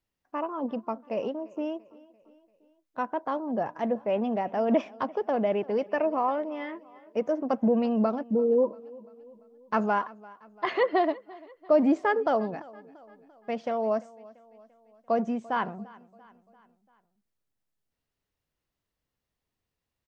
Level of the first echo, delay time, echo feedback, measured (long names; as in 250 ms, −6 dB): −22.0 dB, 342 ms, 53%